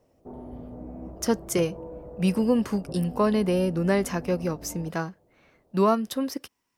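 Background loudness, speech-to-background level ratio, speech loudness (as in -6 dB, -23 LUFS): -41.5 LUFS, 15.5 dB, -26.0 LUFS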